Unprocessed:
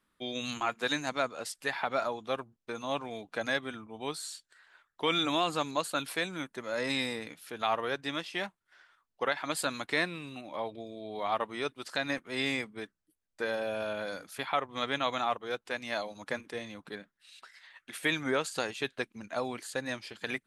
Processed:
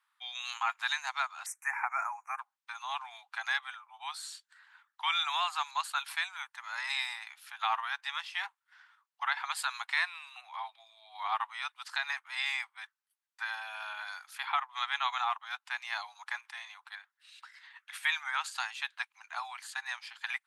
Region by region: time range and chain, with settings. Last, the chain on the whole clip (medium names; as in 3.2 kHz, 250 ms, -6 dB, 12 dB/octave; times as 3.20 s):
1.46–2.39 s: Chebyshev band-stop 2.4–5.9 kHz, order 4 + treble shelf 4.9 kHz +6.5 dB + expander -57 dBFS
whole clip: steep high-pass 800 Hz 72 dB/octave; treble shelf 4.5 kHz -7 dB; trim +2 dB